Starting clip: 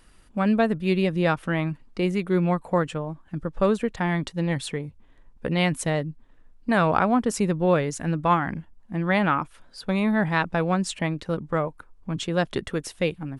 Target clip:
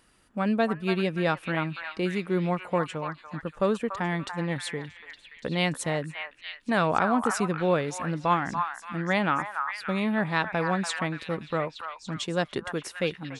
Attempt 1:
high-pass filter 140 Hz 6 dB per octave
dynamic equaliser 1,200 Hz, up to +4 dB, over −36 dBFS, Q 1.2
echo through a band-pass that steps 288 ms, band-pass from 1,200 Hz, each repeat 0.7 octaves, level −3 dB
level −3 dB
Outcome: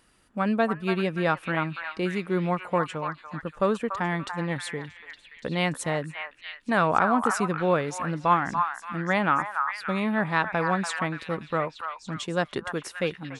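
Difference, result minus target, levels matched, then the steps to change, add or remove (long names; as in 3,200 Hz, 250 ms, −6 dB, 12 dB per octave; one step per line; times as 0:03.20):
4,000 Hz band −3.0 dB
change: dynamic equaliser 4,200 Hz, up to +4 dB, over −36 dBFS, Q 1.2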